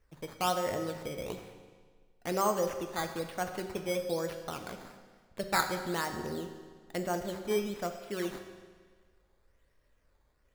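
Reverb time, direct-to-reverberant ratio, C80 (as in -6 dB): 1.6 s, 5.5 dB, 9.0 dB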